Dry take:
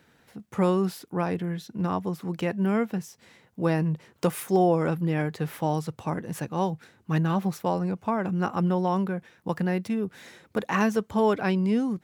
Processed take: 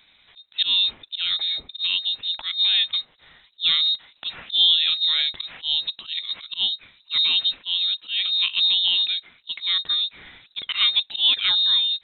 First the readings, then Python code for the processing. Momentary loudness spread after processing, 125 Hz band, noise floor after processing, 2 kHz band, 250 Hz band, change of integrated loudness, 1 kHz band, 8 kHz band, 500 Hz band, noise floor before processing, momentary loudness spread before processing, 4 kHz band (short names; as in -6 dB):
11 LU, under -30 dB, -59 dBFS, +4.5 dB, under -30 dB, +7.0 dB, -14.5 dB, under -35 dB, under -25 dB, -62 dBFS, 9 LU, +30.0 dB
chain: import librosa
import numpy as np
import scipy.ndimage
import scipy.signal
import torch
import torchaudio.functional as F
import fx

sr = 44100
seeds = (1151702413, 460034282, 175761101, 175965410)

y = fx.auto_swell(x, sr, attack_ms=104.0)
y = fx.freq_invert(y, sr, carrier_hz=3900)
y = y * 10.0 ** (4.0 / 20.0)